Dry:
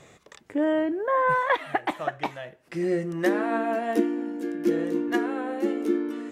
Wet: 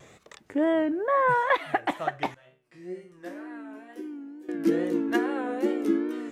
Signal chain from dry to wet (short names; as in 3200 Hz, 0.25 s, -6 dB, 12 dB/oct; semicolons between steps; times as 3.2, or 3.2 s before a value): 2.34–4.49 resonator bank B2 minor, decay 0.41 s; wow and flutter 85 cents